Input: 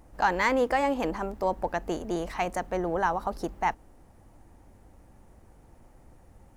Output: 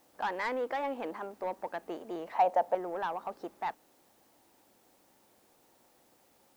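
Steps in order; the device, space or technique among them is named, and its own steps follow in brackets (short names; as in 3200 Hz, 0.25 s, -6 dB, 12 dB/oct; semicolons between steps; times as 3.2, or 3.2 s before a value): tape answering machine (BPF 310–3000 Hz; soft clip -20 dBFS, distortion -16 dB; wow and flutter; white noise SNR 30 dB); 2.32–2.75 band shelf 690 Hz +12.5 dB 1.1 oct; gain -6 dB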